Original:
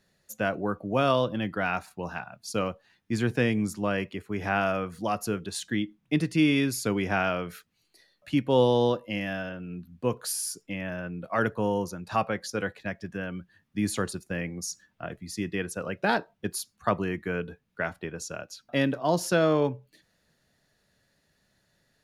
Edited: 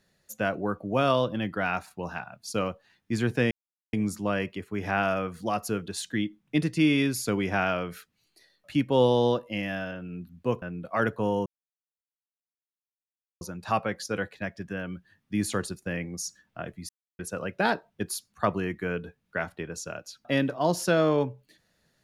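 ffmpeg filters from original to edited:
-filter_complex "[0:a]asplit=6[s0][s1][s2][s3][s4][s5];[s0]atrim=end=3.51,asetpts=PTS-STARTPTS,afade=t=out:st=3.506:d=0.004:c=hsin,apad=pad_dur=0.42[s6];[s1]atrim=start=3.51:end=10.202,asetpts=PTS-STARTPTS,afade=t=in:d=0.004:c=hsin[s7];[s2]atrim=start=11.008:end=11.85,asetpts=PTS-STARTPTS,afade=t=out:st=0.838:d=0.004:c=hsin,apad=pad_dur=1.95[s8];[s3]atrim=start=11.85:end=15.33,asetpts=PTS-STARTPTS,afade=t=in:d=0.004:c=hsin,afade=t=out:st=3.476:d=0.004:c=hsin[s9];[s4]atrim=start=15.33:end=15.63,asetpts=PTS-STARTPTS,volume=0[s10];[s5]atrim=start=15.63,asetpts=PTS-STARTPTS,afade=t=in:d=0.004:c=hsin[s11];[s6][s7]concat=n=2:v=0:a=1[s12];[s8][s9][s10][s11]concat=n=4:v=0:a=1[s13];[s12][s13]acrossfade=d=0.004:c1=hsin:c2=hsin"

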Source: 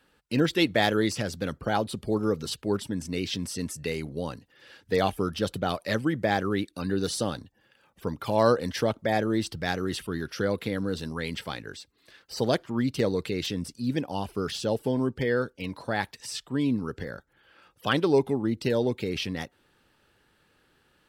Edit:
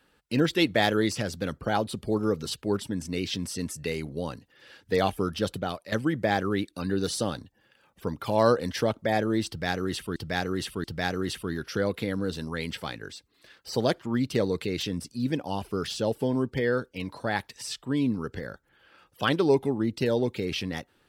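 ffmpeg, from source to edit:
-filter_complex "[0:a]asplit=4[s0][s1][s2][s3];[s0]atrim=end=5.92,asetpts=PTS-STARTPTS,afade=t=out:st=5.5:d=0.42:silence=0.237137[s4];[s1]atrim=start=5.92:end=10.162,asetpts=PTS-STARTPTS,afade=t=in:d=0.004:c=hsin:silence=0.237137[s5];[s2]atrim=start=9.478:end=10.162[s6];[s3]atrim=start=9.478[s7];[s4][s5]concat=n=2:v=0:a=1[s8];[s8][s6]acrossfade=d=0.004:c1=hsin:c2=hsin[s9];[s9][s7]acrossfade=d=0.004:c1=hsin:c2=hsin"

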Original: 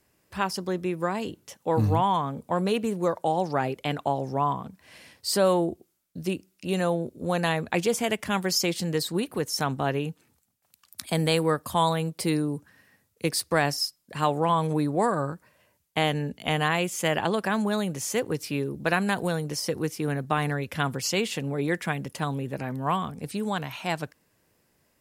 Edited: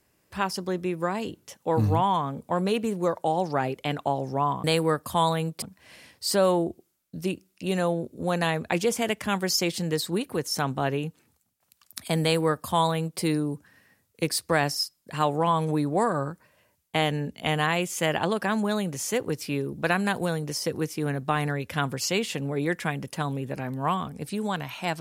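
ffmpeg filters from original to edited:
-filter_complex "[0:a]asplit=3[s0][s1][s2];[s0]atrim=end=4.642[s3];[s1]atrim=start=11.238:end=12.222[s4];[s2]atrim=start=4.638[s5];[s3][s4]acrossfade=d=0.004:c1=hsin:c2=hsin[s6];[s6][s5]acrossfade=d=0.004:c1=hsin:c2=hsin"

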